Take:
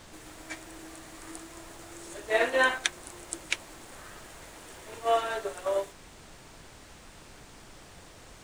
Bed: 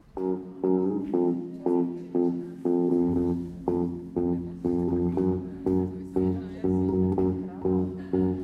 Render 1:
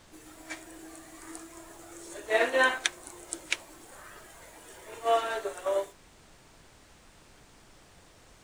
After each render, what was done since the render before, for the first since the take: noise print and reduce 6 dB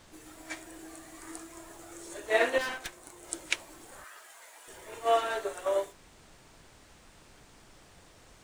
2.58–3.24 s: valve stage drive 32 dB, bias 0.7; 4.04–4.68 s: high-pass 760 Hz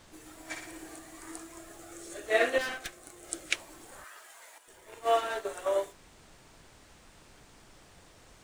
0.42–0.99 s: flutter echo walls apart 10 m, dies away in 0.68 s; 1.58–3.55 s: Butterworth band-stop 950 Hz, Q 5.1; 4.58–5.49 s: companding laws mixed up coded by A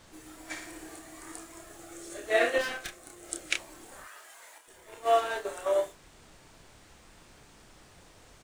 doubling 29 ms -6.5 dB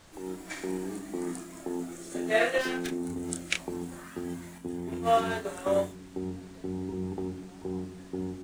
add bed -10 dB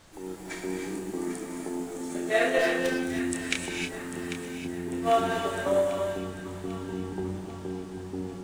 two-band feedback delay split 900 Hz, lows 105 ms, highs 795 ms, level -10.5 dB; gated-style reverb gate 340 ms rising, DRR 2.5 dB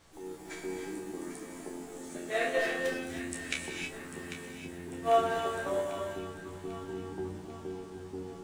feedback comb 76 Hz, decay 0.15 s, harmonics all, mix 100%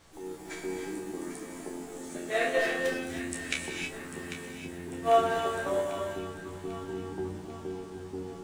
trim +2.5 dB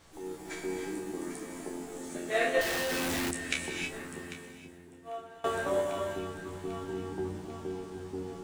2.61–3.31 s: one-bit comparator; 4.00–5.44 s: fade out quadratic, to -21.5 dB

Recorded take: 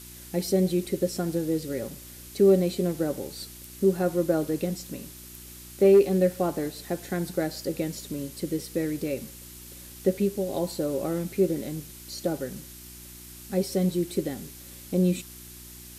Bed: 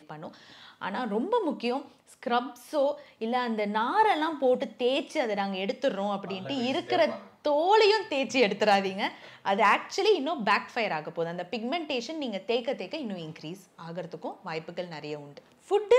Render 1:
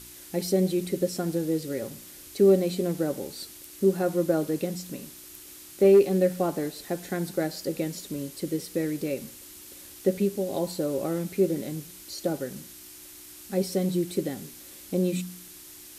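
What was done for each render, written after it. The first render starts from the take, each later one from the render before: de-hum 60 Hz, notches 4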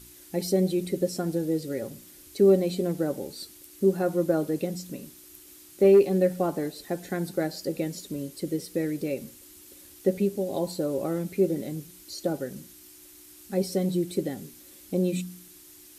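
noise reduction 6 dB, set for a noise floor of -47 dBFS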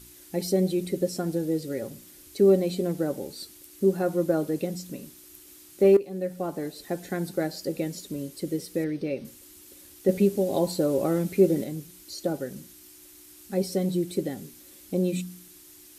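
5.97–6.88 s: fade in, from -16 dB; 8.84–9.25 s: Savitzky-Golay filter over 15 samples; 10.09–11.64 s: gain +4 dB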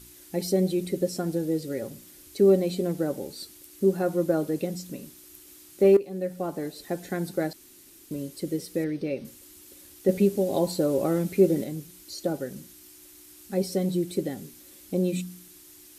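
7.53–8.11 s: room tone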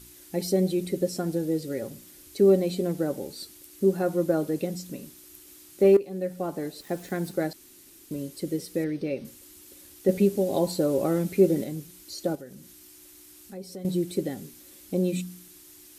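6.81–7.32 s: small samples zeroed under -46.5 dBFS; 12.35–13.85 s: compression 2:1, threshold -46 dBFS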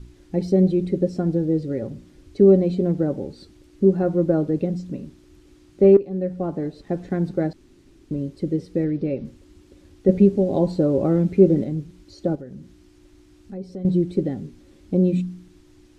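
low-pass 6.4 kHz 12 dB/octave; tilt EQ -3.5 dB/octave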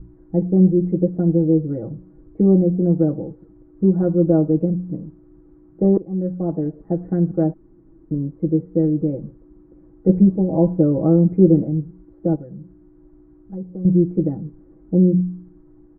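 Bessel low-pass 830 Hz, order 6; comb 6.2 ms, depth 93%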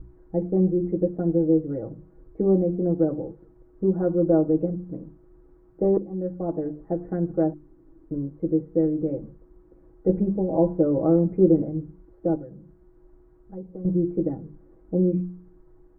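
peaking EQ 170 Hz -8.5 dB 1.4 oct; hum notches 50/100/150/200/250/300/350 Hz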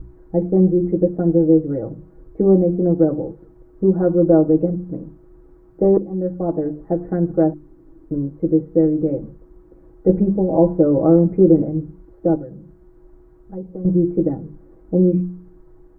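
trim +6.5 dB; peak limiter -3 dBFS, peak gain reduction 2.5 dB

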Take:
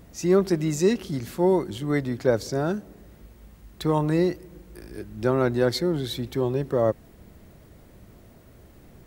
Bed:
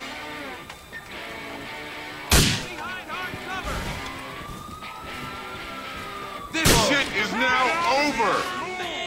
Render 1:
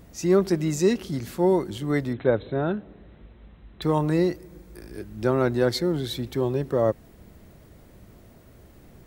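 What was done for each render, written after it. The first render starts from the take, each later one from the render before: 2.13–3.82 s: brick-wall FIR low-pass 4.1 kHz; 4.32–4.89 s: band-stop 2.9 kHz; 5.77–6.57 s: short-mantissa float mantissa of 6-bit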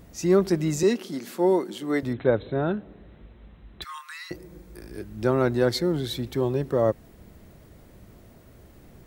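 0.83–2.03 s: high-pass 210 Hz 24 dB/octave; 3.84–4.31 s: steep high-pass 1.1 kHz 72 dB/octave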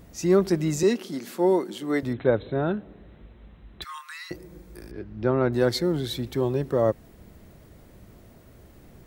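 4.91–5.53 s: distance through air 250 m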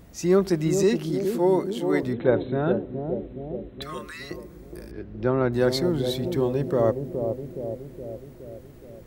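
bucket-brigade echo 418 ms, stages 2048, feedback 60%, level -6 dB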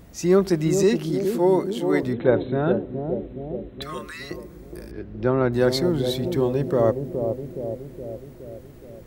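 trim +2 dB

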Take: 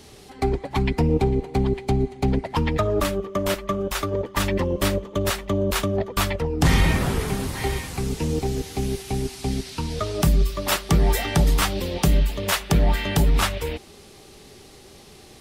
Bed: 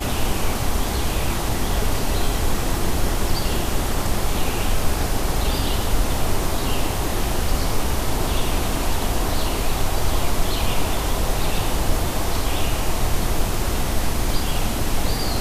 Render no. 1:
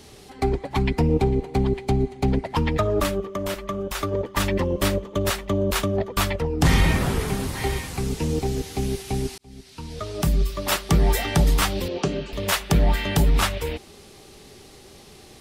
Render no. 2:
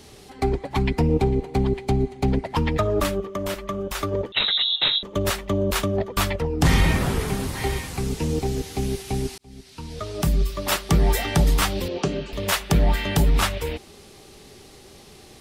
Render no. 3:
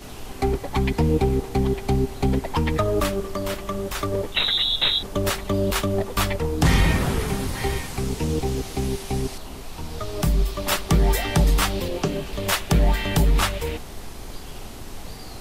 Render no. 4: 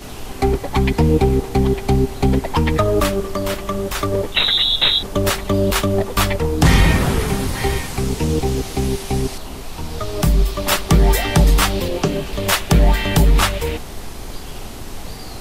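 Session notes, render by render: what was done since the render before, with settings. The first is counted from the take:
3.26–4.02 s: compression 2:1, threshold -26 dBFS; 9.38–11.14 s: fade in equal-power; 11.88–12.33 s: cabinet simulation 160–5900 Hz, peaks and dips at 180 Hz -5 dB, 400 Hz +5 dB, 850 Hz -4 dB, 2 kHz -7 dB, 3.6 kHz -6 dB, 5.1 kHz -4 dB
4.32–5.03 s: frequency inversion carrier 3.9 kHz
add bed -15.5 dB
trim +5.5 dB

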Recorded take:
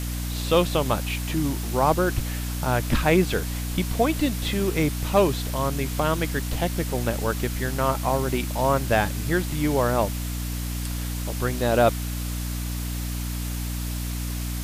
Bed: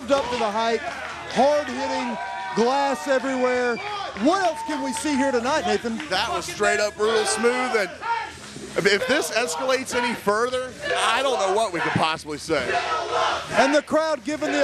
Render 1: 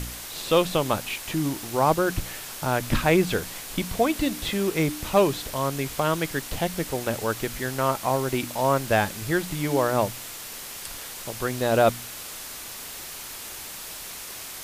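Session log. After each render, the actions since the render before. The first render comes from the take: de-hum 60 Hz, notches 5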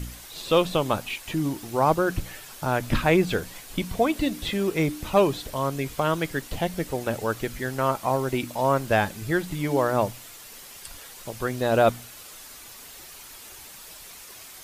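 noise reduction 8 dB, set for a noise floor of -38 dBFS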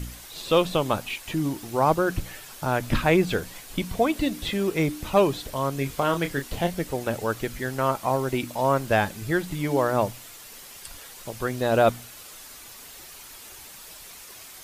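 5.75–6.73 s: doubling 29 ms -7.5 dB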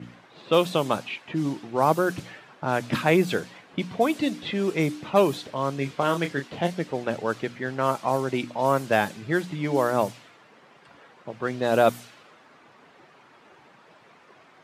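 level-controlled noise filter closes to 1.3 kHz, open at -17.5 dBFS; high-pass 130 Hz 24 dB/octave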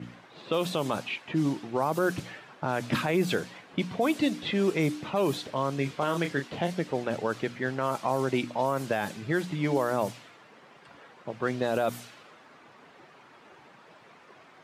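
peak limiter -16 dBFS, peak gain reduction 10.5 dB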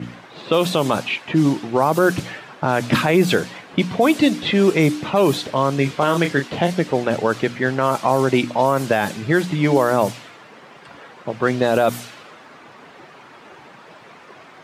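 trim +10.5 dB

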